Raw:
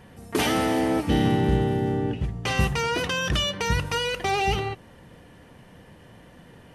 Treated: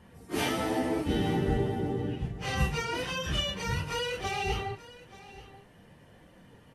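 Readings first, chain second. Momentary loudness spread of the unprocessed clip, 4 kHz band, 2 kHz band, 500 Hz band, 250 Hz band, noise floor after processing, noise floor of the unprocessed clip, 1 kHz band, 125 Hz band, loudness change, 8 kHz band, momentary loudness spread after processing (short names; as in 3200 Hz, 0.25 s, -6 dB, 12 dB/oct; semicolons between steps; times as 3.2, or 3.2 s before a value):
7 LU, -6.0 dB, -6.5 dB, -6.0 dB, -6.5 dB, -57 dBFS, -50 dBFS, -7.0 dB, -6.5 dB, -6.5 dB, -6.5 dB, 19 LU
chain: phase scrambler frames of 0.1 s; on a send: echo 0.882 s -18 dB; on the sum: gain -6.5 dB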